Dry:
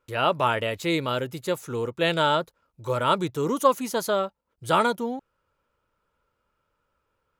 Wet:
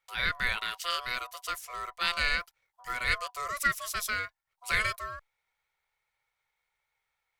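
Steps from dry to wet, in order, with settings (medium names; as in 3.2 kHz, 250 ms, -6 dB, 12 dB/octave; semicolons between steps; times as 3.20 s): ring modulator 860 Hz; amplifier tone stack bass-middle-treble 10-0-10; trim +3 dB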